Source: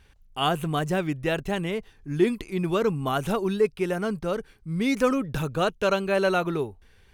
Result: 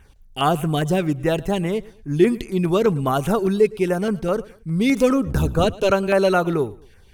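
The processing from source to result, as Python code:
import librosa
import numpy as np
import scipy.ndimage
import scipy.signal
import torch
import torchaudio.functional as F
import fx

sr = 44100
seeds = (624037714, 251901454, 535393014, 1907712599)

y = fx.octave_divider(x, sr, octaves=1, level_db=0.0, at=(5.26, 5.91))
y = fx.filter_lfo_notch(y, sr, shape='saw_down', hz=4.9, low_hz=830.0, high_hz=4800.0, q=0.89)
y = fx.echo_feedback(y, sr, ms=112, feedback_pct=34, wet_db=-21.5)
y = y * librosa.db_to_amplitude(6.5)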